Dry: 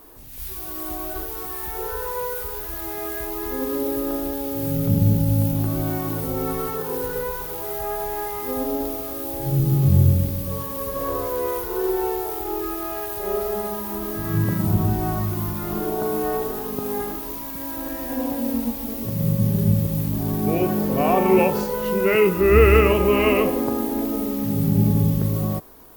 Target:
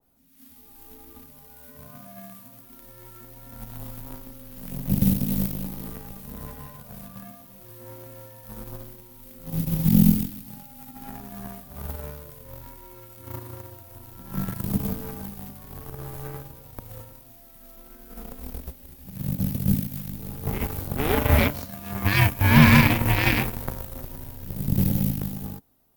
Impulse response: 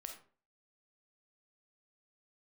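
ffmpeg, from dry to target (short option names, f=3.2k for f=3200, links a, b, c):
-af "aeval=exprs='0.75*(cos(1*acos(clip(val(0)/0.75,-1,1)))-cos(1*PI/2))+0.0944*(cos(7*acos(clip(val(0)/0.75,-1,1)))-cos(7*PI/2))':c=same,afreqshift=-300,adynamicequalizer=threshold=0.0112:dfrequency=1700:dqfactor=0.7:tfrequency=1700:tqfactor=0.7:attack=5:release=100:ratio=0.375:range=2.5:mode=boostabove:tftype=highshelf,volume=-1dB"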